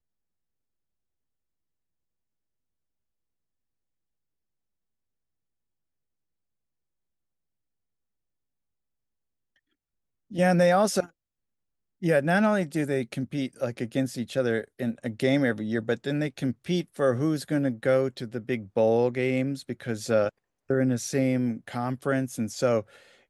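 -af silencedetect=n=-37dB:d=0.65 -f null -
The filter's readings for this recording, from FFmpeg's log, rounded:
silence_start: 0.00
silence_end: 10.32 | silence_duration: 10.32
silence_start: 11.06
silence_end: 12.02 | silence_duration: 0.97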